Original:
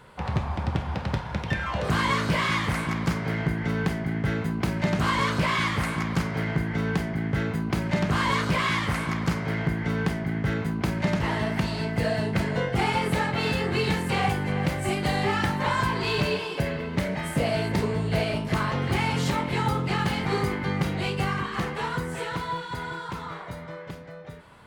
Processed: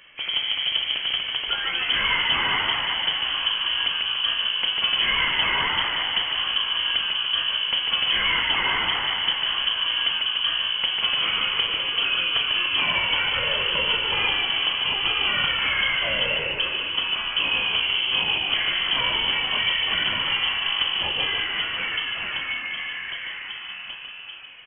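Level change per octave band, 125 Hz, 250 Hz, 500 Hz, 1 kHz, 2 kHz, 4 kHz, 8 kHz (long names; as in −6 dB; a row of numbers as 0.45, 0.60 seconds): −19.0 dB, −16.5 dB, −8.5 dB, −2.0 dB, +6.0 dB, +17.0 dB, below −40 dB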